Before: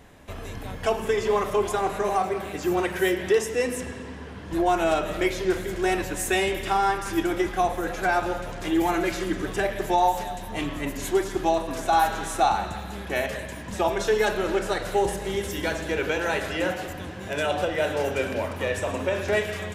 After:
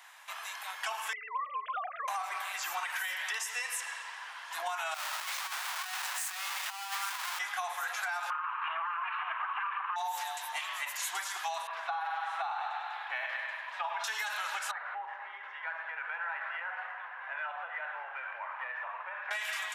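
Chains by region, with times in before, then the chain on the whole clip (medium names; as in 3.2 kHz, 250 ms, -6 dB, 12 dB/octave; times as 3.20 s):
1.13–2.08 s: formants replaced by sine waves + compression 2.5:1, threshold -24 dBFS + distance through air 220 m
4.94–7.39 s: square wave that keeps the level + high-pass 470 Hz + compressor with a negative ratio -27 dBFS, ratio -0.5
8.30–9.96 s: comb filter that takes the minimum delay 0.72 ms + steep low-pass 2.9 kHz 48 dB/octave + peaking EQ 1.1 kHz +13.5 dB 0.63 oct
11.67–14.04 s: distance through air 380 m + thinning echo 99 ms, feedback 61%, high-pass 190 Hz, level -6.5 dB
14.71–19.31 s: low-pass 1.9 kHz 24 dB/octave + compression 3:1, threshold -31 dBFS
whole clip: steep high-pass 880 Hz 36 dB/octave; peak limiter -24 dBFS; compression, threshold -35 dBFS; trim +3 dB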